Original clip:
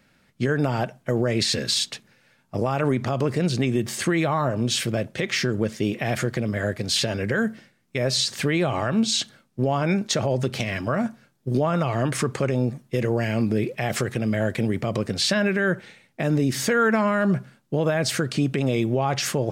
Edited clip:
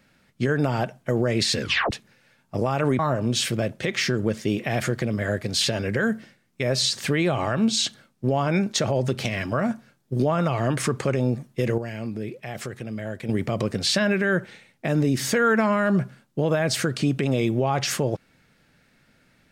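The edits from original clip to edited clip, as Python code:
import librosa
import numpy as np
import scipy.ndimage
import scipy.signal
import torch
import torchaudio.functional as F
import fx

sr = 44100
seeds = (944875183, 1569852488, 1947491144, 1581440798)

y = fx.edit(x, sr, fx.tape_stop(start_s=1.61, length_s=0.3),
    fx.cut(start_s=2.99, length_s=1.35),
    fx.clip_gain(start_s=13.13, length_s=1.51, db=-8.5), tone=tone)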